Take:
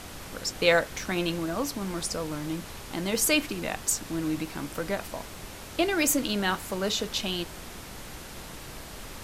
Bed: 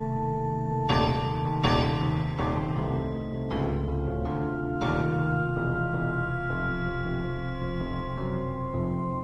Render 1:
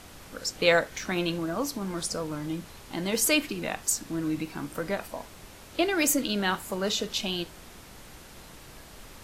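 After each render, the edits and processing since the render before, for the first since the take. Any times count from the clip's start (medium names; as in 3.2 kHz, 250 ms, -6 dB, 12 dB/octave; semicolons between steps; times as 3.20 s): noise print and reduce 6 dB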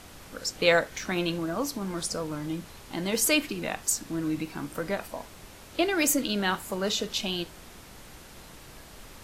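no audible change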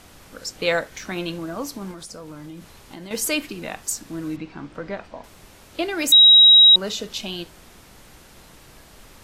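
1.91–3.11 s: compression, threshold -34 dBFS; 4.36–5.24 s: distance through air 150 m; 6.12–6.76 s: bleep 3.83 kHz -7 dBFS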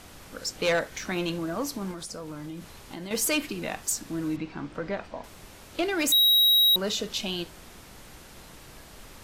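saturation -18.5 dBFS, distortion -6 dB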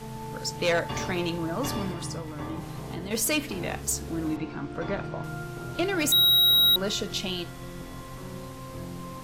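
add bed -9.5 dB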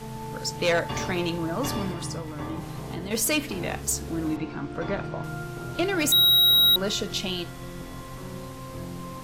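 trim +1.5 dB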